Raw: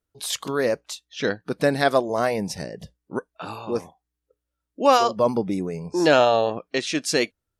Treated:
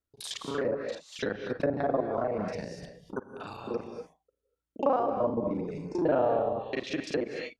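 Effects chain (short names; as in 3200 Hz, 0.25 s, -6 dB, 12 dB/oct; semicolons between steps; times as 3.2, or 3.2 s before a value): local time reversal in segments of 34 ms; non-linear reverb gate 0.27 s rising, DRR 6 dB; treble ducked by the level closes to 860 Hz, closed at -17 dBFS; gain -7 dB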